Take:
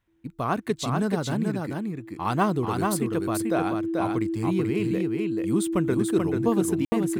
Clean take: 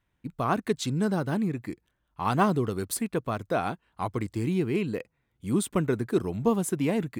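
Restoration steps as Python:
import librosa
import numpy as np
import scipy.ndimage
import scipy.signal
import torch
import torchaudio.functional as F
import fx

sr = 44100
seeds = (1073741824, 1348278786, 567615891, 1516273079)

y = fx.notch(x, sr, hz=330.0, q=30.0)
y = fx.fix_ambience(y, sr, seeds[0], print_start_s=0.0, print_end_s=0.5, start_s=6.85, end_s=6.92)
y = fx.fix_echo_inverse(y, sr, delay_ms=436, level_db=-3.5)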